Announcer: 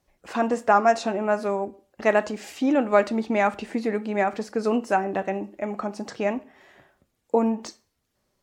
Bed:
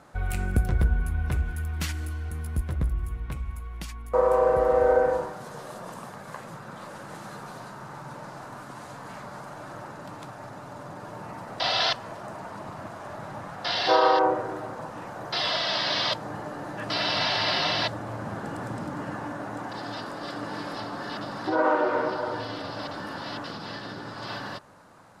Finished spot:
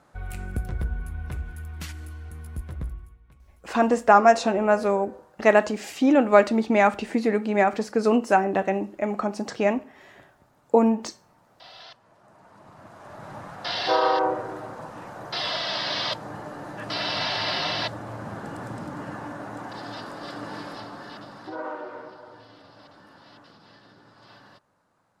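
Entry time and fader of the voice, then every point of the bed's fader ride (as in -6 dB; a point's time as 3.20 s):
3.40 s, +3.0 dB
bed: 2.89 s -6 dB
3.20 s -21.5 dB
12.00 s -21.5 dB
13.33 s -1.5 dB
20.55 s -1.5 dB
22.22 s -16 dB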